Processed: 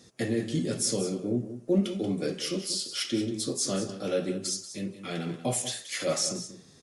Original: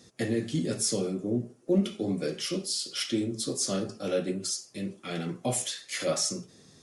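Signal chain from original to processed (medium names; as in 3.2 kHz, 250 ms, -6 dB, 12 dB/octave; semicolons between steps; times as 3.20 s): delay 184 ms -12 dB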